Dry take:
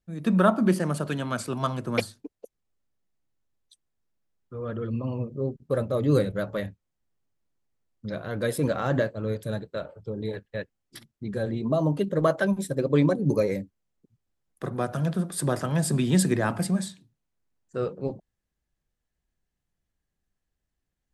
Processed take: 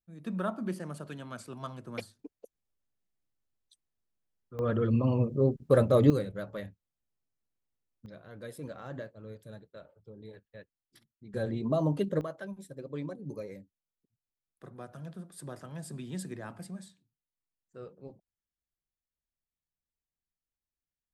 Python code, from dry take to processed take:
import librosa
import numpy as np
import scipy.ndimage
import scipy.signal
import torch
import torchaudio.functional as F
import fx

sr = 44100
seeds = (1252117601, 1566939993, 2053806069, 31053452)

y = fx.gain(x, sr, db=fx.steps((0.0, -13.0), (2.19, -6.5), (4.59, 3.5), (6.1, -9.0), (8.06, -16.5), (11.34, -4.0), (12.21, -17.0)))